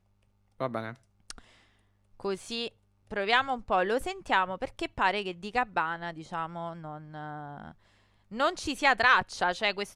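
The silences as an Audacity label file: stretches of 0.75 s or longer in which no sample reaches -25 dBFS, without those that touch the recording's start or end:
1.300000	2.250000	silence
6.440000	8.400000	silence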